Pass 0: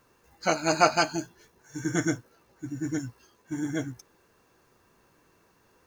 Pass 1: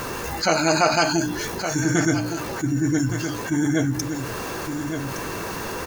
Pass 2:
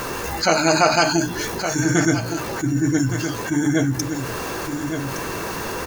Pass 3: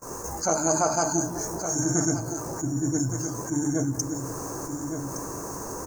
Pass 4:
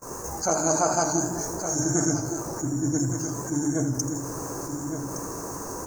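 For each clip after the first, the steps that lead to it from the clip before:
notches 60/120/180/240/300 Hz; echo 1.165 s -23.5 dB; fast leveller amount 70%
notches 50/100/150/200/250/300 Hz; gain +2.5 dB
EQ curve 1100 Hz 0 dB, 3300 Hz -28 dB, 6400 Hz +9 dB, 11000 Hz 0 dB; darkening echo 0.183 s, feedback 84%, low-pass 1900 Hz, level -15 dB; gate -28 dBFS, range -28 dB; gain -7 dB
warbling echo 81 ms, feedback 61%, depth 127 cents, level -10.5 dB

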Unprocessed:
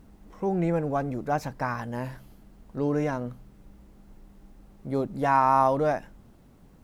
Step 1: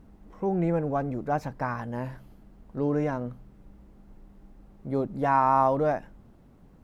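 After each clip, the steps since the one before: high shelf 2800 Hz -9 dB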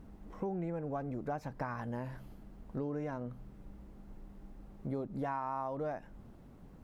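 compressor 6:1, threshold -35 dBFS, peak gain reduction 16.5 dB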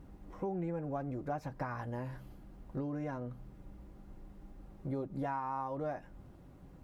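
notch comb 220 Hz; gain +1 dB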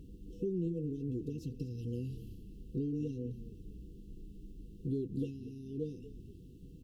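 FFT band-reject 500–2600 Hz; frequency-shifting echo 0.238 s, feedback 47%, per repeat -31 Hz, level -14.5 dB; gain +2.5 dB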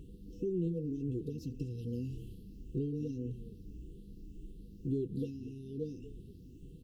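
moving spectral ripple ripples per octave 0.67, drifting +1.8 Hz, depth 7 dB

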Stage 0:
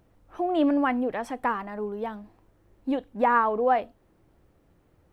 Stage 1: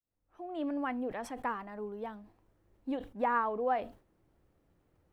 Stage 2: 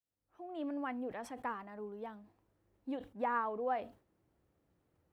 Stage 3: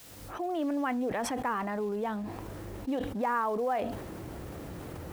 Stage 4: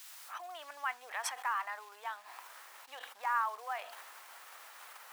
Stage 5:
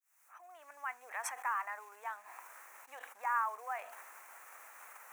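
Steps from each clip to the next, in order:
opening faded in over 1.09 s; sustainer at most 150 dB/s; gain -8.5 dB
HPF 58 Hz; gain -4.5 dB
in parallel at -6.5 dB: short-mantissa float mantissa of 2-bit; on the sum: fast leveller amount 70%
HPF 970 Hz 24 dB/oct
opening faded in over 1.27 s; band shelf 3900 Hz -13.5 dB 1 oct; gain -1 dB

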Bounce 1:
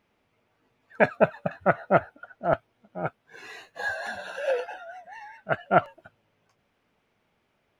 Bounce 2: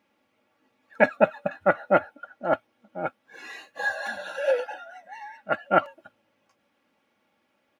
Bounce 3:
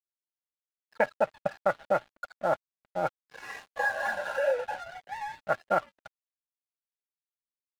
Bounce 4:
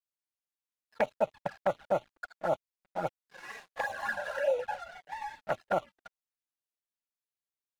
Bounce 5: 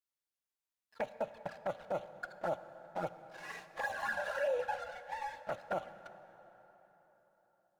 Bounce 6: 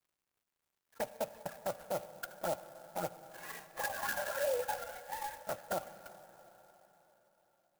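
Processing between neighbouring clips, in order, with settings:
HPF 140 Hz 12 dB/oct; comb 3.6 ms, depth 60%
graphic EQ 125/250/500/1000/2000/4000 Hz +11/-8/+5/+7/+3/-8 dB; compressor 4:1, threshold -24 dBFS, peak gain reduction 14.5 dB; crossover distortion -44 dBFS
envelope flanger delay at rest 9.6 ms, full sweep at -23.5 dBFS
limiter -24.5 dBFS, peak gain reduction 10 dB; plate-style reverb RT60 4.2 s, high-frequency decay 0.65×, DRR 11.5 dB; gain -1.5 dB
crackle 280/s -68 dBFS; clock jitter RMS 0.061 ms

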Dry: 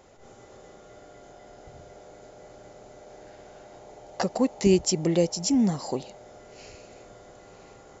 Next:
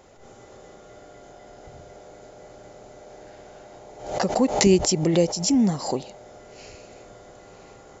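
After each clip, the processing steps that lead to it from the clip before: backwards sustainer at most 90 dB/s; gain +2.5 dB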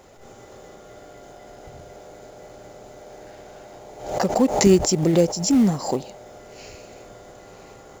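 dynamic EQ 3300 Hz, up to -6 dB, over -44 dBFS, Q 0.87; in parallel at -10 dB: companded quantiser 4-bit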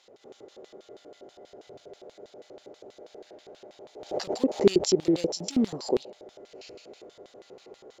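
LFO band-pass square 6.2 Hz 400–3800 Hz; gain +2.5 dB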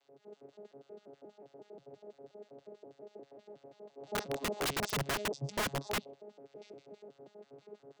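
arpeggiated vocoder bare fifth, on C#3, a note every 0.177 s; wrapped overs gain 24 dB; gain -3.5 dB

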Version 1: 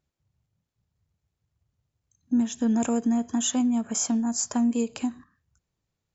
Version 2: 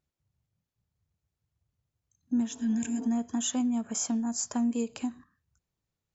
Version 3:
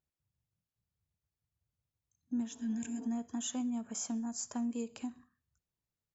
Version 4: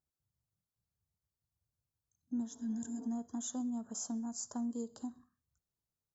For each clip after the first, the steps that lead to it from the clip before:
spectral repair 2.53–3.05, 240–1500 Hz both; gain -4.5 dB
feedback echo 66 ms, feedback 51%, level -24 dB; gain -7.5 dB
Butterworth band-stop 2400 Hz, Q 1; gain -2 dB

